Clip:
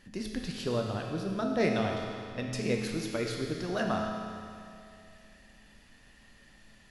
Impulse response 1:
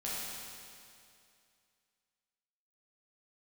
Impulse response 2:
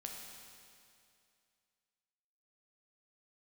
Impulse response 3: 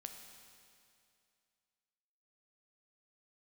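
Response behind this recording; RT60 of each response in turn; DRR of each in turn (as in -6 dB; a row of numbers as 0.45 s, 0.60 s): 2; 2.5 s, 2.5 s, 2.5 s; -8.5 dB, 0.0 dB, 4.0 dB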